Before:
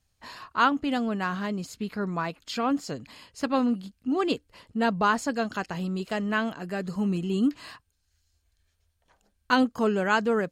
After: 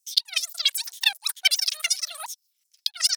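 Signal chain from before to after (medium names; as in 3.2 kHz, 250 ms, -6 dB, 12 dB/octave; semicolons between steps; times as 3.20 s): LFO high-pass saw down 0.8 Hz 810–2200 Hz; wide varispeed 3.32×; inverted gate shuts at -10 dBFS, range -27 dB; trim +6 dB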